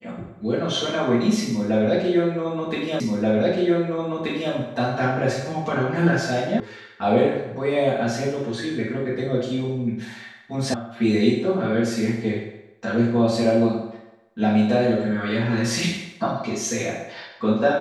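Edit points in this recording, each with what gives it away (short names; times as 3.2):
3 repeat of the last 1.53 s
6.6 sound cut off
10.74 sound cut off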